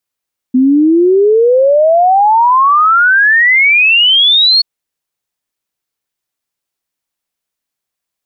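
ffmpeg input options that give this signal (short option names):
-f lavfi -i "aevalsrc='0.562*clip(min(t,4.08-t)/0.01,0,1)*sin(2*PI*250*4.08/log(4400/250)*(exp(log(4400/250)*t/4.08)-1))':d=4.08:s=44100"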